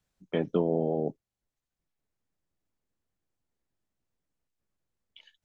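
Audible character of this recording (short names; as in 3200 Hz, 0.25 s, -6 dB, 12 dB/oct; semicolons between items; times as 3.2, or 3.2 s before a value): noise floor -90 dBFS; spectral tilt -6.5 dB/oct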